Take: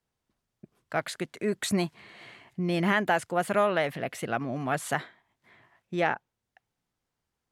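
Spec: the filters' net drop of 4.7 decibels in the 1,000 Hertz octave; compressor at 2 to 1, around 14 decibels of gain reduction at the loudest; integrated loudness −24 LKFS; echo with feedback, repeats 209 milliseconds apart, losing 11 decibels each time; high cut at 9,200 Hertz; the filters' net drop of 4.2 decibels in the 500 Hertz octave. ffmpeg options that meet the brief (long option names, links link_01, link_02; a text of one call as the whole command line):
ffmpeg -i in.wav -af "lowpass=9200,equalizer=frequency=500:width_type=o:gain=-4,equalizer=frequency=1000:width_type=o:gain=-5,acompressor=threshold=-50dB:ratio=2,aecho=1:1:209|418|627:0.282|0.0789|0.0221,volume=20dB" out.wav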